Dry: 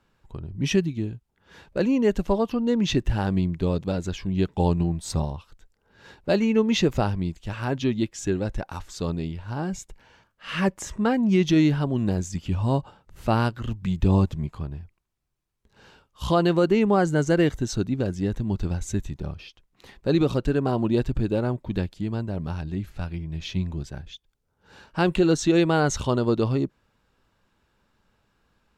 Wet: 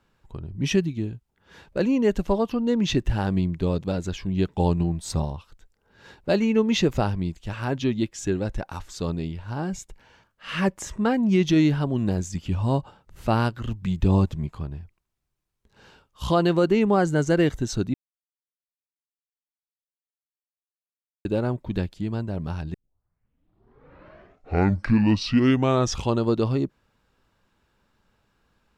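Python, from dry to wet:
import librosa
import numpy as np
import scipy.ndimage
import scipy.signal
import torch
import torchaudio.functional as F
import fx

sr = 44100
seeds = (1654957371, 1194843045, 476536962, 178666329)

y = fx.edit(x, sr, fx.silence(start_s=17.94, length_s=3.31),
    fx.tape_start(start_s=22.74, length_s=3.59), tone=tone)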